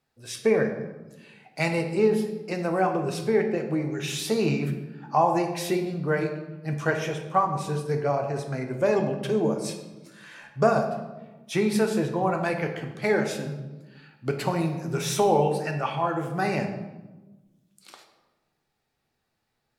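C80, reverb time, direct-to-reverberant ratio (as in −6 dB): 9.5 dB, 1.2 s, 3.5 dB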